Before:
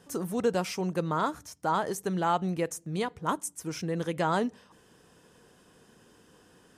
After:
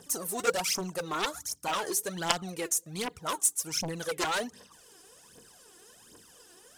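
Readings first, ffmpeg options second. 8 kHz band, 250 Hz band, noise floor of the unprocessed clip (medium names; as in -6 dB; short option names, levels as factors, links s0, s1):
+11.0 dB, -7.5 dB, -61 dBFS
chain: -af "aphaser=in_gain=1:out_gain=1:delay=3:decay=0.72:speed=1.3:type=triangular,aeval=exprs='0.501*(cos(1*acos(clip(val(0)/0.501,-1,1)))-cos(1*PI/2))+0.224*(cos(7*acos(clip(val(0)/0.501,-1,1)))-cos(7*PI/2))':c=same,bass=f=250:g=-7,treble=f=4000:g=11,volume=0.376"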